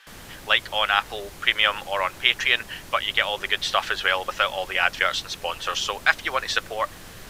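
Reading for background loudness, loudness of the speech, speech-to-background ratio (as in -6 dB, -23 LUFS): -42.5 LUFS, -23.0 LUFS, 19.5 dB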